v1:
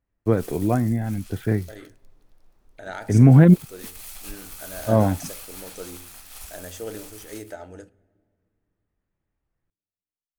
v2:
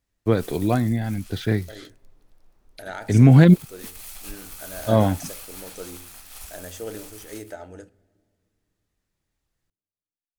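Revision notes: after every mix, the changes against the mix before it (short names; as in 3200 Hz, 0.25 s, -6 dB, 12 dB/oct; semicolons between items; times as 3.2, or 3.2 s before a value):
first voice: remove Gaussian blur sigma 3.7 samples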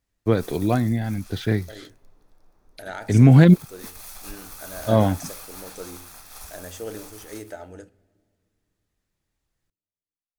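background: send +11.5 dB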